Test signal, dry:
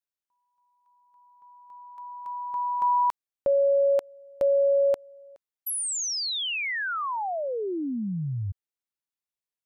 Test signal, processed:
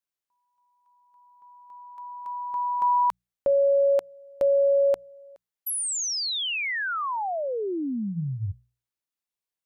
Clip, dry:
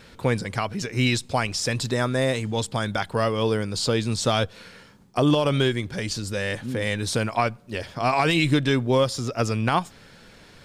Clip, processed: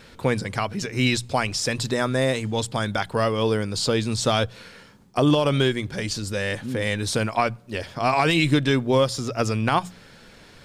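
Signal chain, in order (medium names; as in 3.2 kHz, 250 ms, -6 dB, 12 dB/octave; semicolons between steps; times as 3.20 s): hum notches 60/120/180 Hz; trim +1 dB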